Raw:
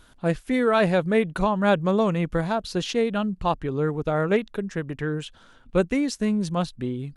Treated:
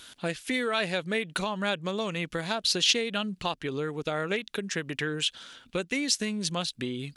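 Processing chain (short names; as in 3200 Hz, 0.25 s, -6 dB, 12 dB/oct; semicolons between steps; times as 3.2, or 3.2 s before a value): high shelf 6800 Hz +10.5 dB; compressor, threshold -27 dBFS, peak gain reduction 12 dB; weighting filter D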